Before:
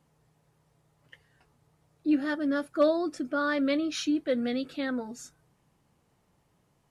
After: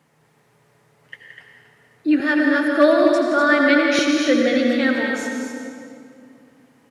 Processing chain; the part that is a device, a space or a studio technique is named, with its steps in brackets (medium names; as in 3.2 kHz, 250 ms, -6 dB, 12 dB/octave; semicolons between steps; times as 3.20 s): stadium PA (high-pass 140 Hz 12 dB/octave; peaking EQ 1.9 kHz +7.5 dB 0.87 oct; loudspeakers at several distances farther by 59 m -10 dB, 85 m -6 dB; reverberation RT60 2.5 s, pre-delay 71 ms, DRR 2 dB); 2.20–3.99 s: steep high-pass 240 Hz; trim +7.5 dB